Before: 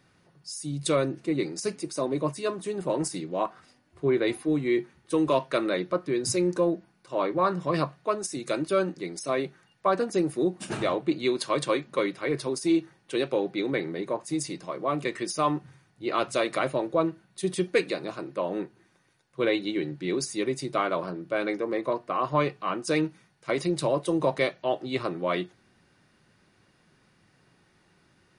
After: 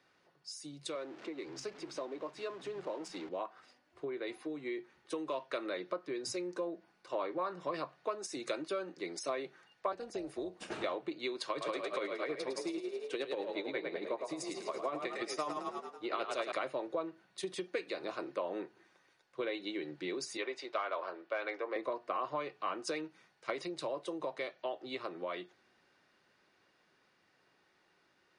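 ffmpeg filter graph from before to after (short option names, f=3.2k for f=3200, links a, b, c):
-filter_complex "[0:a]asettb=1/sr,asplit=3[a][b][c];[a]atrim=end=0.954[d];[b]atrim=start=0.95:end=3.29,asetpts=PTS-STARTPTS,afade=t=in:d=0.004:c=qsin,afade=t=out:st=2.336:d=0.004:c=qsin,aeval=exprs='val(0)+0.5*0.015*sgn(val(0))':c=same,acrossover=split=160[e][f];[e]adelay=510[g];[g][f]amix=inputs=2:normalize=0,atrim=end_sample=103194,adynamicsmooth=sensitivity=4:basefreq=4.4k[h];[c]atrim=start=3.286[i];[d][h]acrossfade=d=0.004:c1=hsin:c2=qsin[j];[j][i]acrossfade=d=0.004:c1=qsin:c2=hsin,asettb=1/sr,asplit=3[k][l][m];[k]atrim=end=9.924[n];[l]atrim=start=9.92:end=10.84,asetpts=PTS-STARTPTS,afade=t=in:d=0.004:c=qsin,afade=t=out:st=0.916:d=0.004:c=qsin,acrossover=split=410|2500[o][p][q];[o]acompressor=threshold=-28dB:ratio=4[r];[p]acompressor=threshold=-37dB:ratio=4[s];[q]acompressor=threshold=-43dB:ratio=4[t];[r][s][t]amix=inputs=3:normalize=0,tremolo=f=280:d=0.571[u];[m]atrim=start=10.836[v];[n][u]acrossfade=d=0.004:c1=hsin:c2=qsin[w];[w][v]acrossfade=d=0.004:c1=qsin:c2=hsin,asettb=1/sr,asplit=3[x][y][z];[x]atrim=end=11.504[aa];[y]atrim=start=11.5:end=16.52,asetpts=PTS-STARTPTS,afade=t=in:d=0.004:c=qsin,afade=t=out:st=5.016:d=0.004:c=qsin,asplit=7[ab][ac][ad][ae][af][ag][ah];[ac]adelay=108,afreqshift=34,volume=-5.5dB[ai];[ad]adelay=216,afreqshift=68,volume=-11.3dB[aj];[ae]adelay=324,afreqshift=102,volume=-17.2dB[ak];[af]adelay=432,afreqshift=136,volume=-23dB[al];[ag]adelay=540,afreqshift=170,volume=-28.9dB[am];[ah]adelay=648,afreqshift=204,volume=-34.7dB[an];[ab][ai][aj][ak][al][am][an]amix=inputs=7:normalize=0,atrim=end_sample=221382,tremolo=f=11:d=0.61[ao];[z]atrim=start=16.516[ap];[aa][ao]acrossfade=d=0.004:c1=hsin:c2=qsin[aq];[aq][ap]acrossfade=d=0.004:c1=qsin:c2=hsin,asettb=1/sr,asplit=3[ar][as][at];[ar]atrim=end=20.374[au];[as]atrim=start=20.37:end=21.76,asetpts=PTS-STARTPTS,afade=t=in:d=0.004:c=qsin,afade=t=out:st=1.386:d=0.004:c=qsin,asoftclip=type=hard:threshold=-17.5dB,highpass=570,lowpass=3.7k[av];[at]atrim=start=21.756[aw];[au][av]acrossfade=d=0.004:c1=hsin:c2=qsin[ax];[ax][aw]acrossfade=d=0.004:c1=qsin:c2=hsin,acompressor=threshold=-31dB:ratio=12,acrossover=split=310 6800:gain=0.158 1 0.2[ay][az][ba];[ay][az][ba]amix=inputs=3:normalize=0,dynaudnorm=f=510:g=17:m=4dB,volume=-4.5dB"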